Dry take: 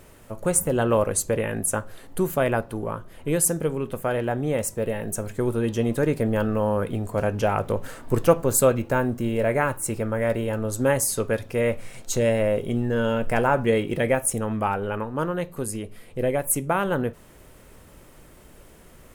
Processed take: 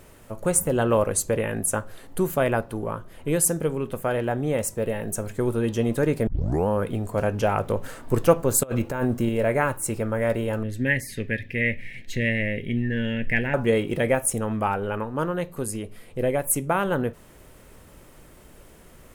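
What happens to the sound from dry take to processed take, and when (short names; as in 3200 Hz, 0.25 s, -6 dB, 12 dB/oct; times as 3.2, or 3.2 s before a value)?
6.27 tape start 0.41 s
8.63–9.29 negative-ratio compressor -24 dBFS, ratio -0.5
10.63–13.54 EQ curve 250 Hz 0 dB, 800 Hz -16 dB, 1300 Hz -24 dB, 1800 Hz +12 dB, 7500 Hz -17 dB, 14000 Hz -12 dB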